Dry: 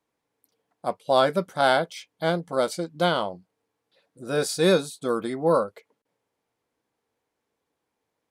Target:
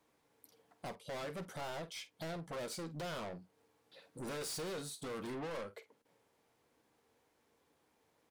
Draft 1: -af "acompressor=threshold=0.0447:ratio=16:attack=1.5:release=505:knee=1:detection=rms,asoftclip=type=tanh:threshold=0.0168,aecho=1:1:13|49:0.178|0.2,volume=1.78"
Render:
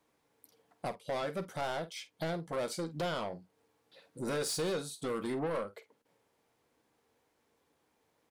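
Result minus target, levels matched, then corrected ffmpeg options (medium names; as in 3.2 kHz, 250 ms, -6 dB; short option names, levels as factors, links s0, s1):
saturation: distortion -6 dB
-af "acompressor=threshold=0.0447:ratio=16:attack=1.5:release=505:knee=1:detection=rms,asoftclip=type=tanh:threshold=0.00531,aecho=1:1:13|49:0.178|0.2,volume=1.78"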